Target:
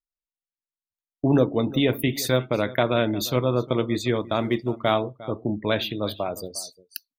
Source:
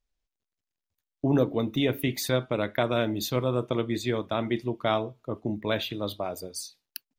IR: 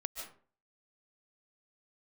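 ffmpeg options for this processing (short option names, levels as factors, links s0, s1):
-filter_complex "[0:a]aecho=1:1:353:0.126,asplit=3[s0][s1][s2];[s0]afade=t=out:st=4.19:d=0.02[s3];[s1]acrusher=bits=6:mode=log:mix=0:aa=0.000001,afade=t=in:st=4.19:d=0.02,afade=t=out:st=4.92:d=0.02[s4];[s2]afade=t=in:st=4.92:d=0.02[s5];[s3][s4][s5]amix=inputs=3:normalize=0,afftdn=nr=23:nf=-49,volume=1.58"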